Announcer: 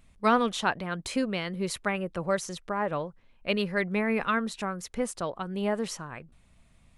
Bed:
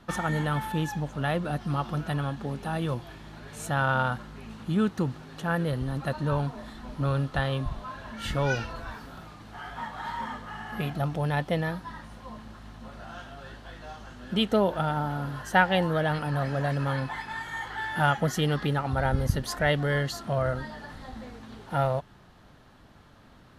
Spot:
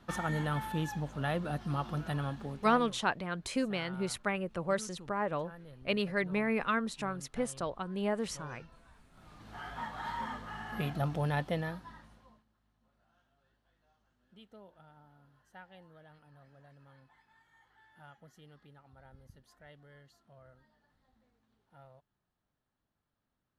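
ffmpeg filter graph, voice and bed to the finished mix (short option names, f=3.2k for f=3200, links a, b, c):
-filter_complex "[0:a]adelay=2400,volume=-4dB[a];[1:a]volume=14dB,afade=t=out:st=2.32:d=0.62:silence=0.125893,afade=t=in:st=9.12:d=0.43:silence=0.105925,afade=t=out:st=11.24:d=1.21:silence=0.0421697[b];[a][b]amix=inputs=2:normalize=0"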